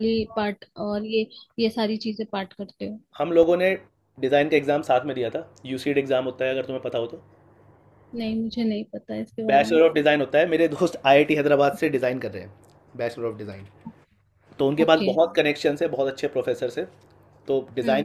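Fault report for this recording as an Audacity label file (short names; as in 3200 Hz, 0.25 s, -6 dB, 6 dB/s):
3.430000	3.430000	gap 2.6 ms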